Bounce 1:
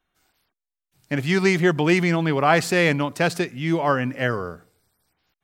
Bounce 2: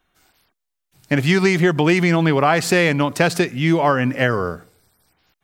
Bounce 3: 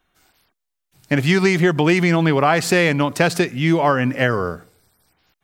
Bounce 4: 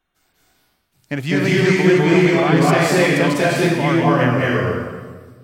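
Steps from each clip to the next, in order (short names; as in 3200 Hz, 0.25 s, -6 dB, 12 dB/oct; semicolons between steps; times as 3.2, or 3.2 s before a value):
compressor, threshold -20 dBFS, peak gain reduction 8.5 dB; gain +8 dB
nothing audible
reverb RT60 1.4 s, pre-delay 0.188 s, DRR -6 dB; gain -6 dB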